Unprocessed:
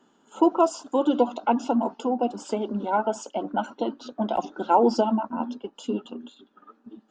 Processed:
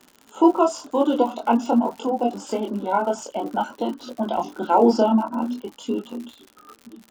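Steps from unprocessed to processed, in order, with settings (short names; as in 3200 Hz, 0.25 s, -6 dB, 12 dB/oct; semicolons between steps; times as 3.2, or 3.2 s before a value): chorus voices 2, 0.49 Hz, delay 24 ms, depth 2.7 ms; crackle 95/s -39 dBFS; gain +6 dB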